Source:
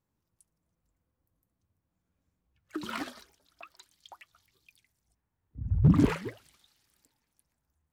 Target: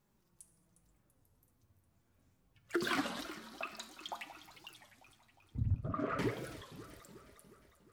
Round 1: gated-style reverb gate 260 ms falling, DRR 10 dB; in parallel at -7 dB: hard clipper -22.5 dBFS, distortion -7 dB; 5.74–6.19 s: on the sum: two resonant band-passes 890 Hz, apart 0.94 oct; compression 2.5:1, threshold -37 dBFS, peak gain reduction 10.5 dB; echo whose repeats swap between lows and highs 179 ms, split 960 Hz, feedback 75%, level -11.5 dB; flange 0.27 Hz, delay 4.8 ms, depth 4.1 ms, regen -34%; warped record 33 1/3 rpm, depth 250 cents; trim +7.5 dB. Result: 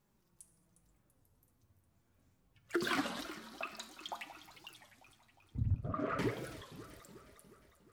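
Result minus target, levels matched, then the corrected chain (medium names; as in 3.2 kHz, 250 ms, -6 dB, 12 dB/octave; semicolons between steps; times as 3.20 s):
hard clipper: distortion +31 dB
gated-style reverb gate 260 ms falling, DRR 10 dB; in parallel at -7 dB: hard clipper -12 dBFS, distortion -39 dB; 5.74–6.19 s: on the sum: two resonant band-passes 890 Hz, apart 0.94 oct; compression 2.5:1, threshold -37 dBFS, peak gain reduction 11 dB; echo whose repeats swap between lows and highs 179 ms, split 960 Hz, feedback 75%, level -11.5 dB; flange 0.27 Hz, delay 4.8 ms, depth 4.1 ms, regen -34%; warped record 33 1/3 rpm, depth 250 cents; trim +7.5 dB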